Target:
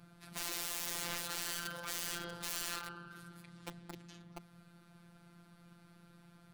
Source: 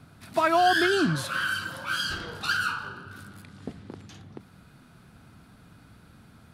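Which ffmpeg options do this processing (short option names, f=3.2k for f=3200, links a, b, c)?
-af "aeval=exprs='(mod(25.1*val(0)+1,2)-1)/25.1':c=same,afftfilt=real='hypot(re,im)*cos(PI*b)':imag='0':win_size=1024:overlap=0.75,volume=-4dB"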